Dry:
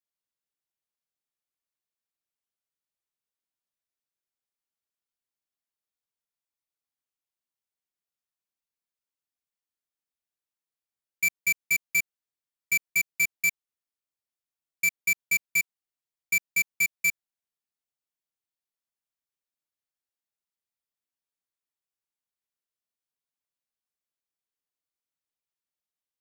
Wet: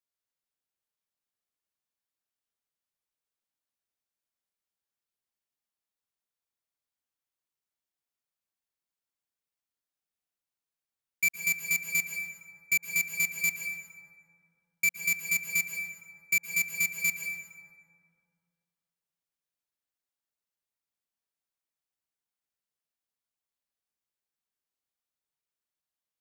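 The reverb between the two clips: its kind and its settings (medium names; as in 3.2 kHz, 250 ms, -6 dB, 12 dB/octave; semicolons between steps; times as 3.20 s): plate-style reverb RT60 2.2 s, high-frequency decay 0.4×, pre-delay 105 ms, DRR 4 dB; trim -1.5 dB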